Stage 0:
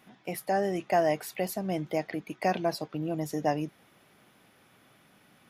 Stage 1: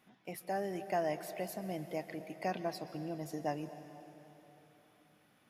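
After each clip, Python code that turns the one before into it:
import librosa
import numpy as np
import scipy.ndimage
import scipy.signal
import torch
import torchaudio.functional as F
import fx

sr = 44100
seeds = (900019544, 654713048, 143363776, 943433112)

y = fx.rev_plate(x, sr, seeds[0], rt60_s=3.6, hf_ratio=0.9, predelay_ms=110, drr_db=10.5)
y = y * librosa.db_to_amplitude(-9.0)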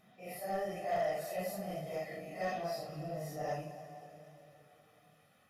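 y = fx.phase_scramble(x, sr, seeds[1], window_ms=200)
y = 10.0 ** (-31.0 / 20.0) * np.tanh(y / 10.0 ** (-31.0 / 20.0))
y = y + 0.61 * np.pad(y, (int(1.6 * sr / 1000.0), 0))[:len(y)]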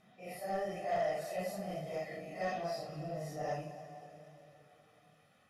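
y = scipy.signal.sosfilt(scipy.signal.butter(2, 9700.0, 'lowpass', fs=sr, output='sos'), x)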